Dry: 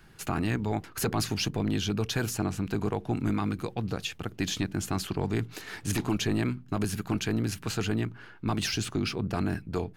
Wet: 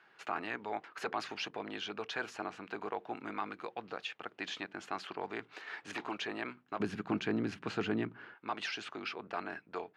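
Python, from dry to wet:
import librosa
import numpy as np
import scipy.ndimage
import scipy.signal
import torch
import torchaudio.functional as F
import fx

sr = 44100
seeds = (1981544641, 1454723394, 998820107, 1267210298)

y = fx.bandpass_edges(x, sr, low_hz=fx.steps((0.0, 610.0), (6.8, 230.0), (8.34, 650.0)), high_hz=2600.0)
y = F.gain(torch.from_numpy(y), -1.5).numpy()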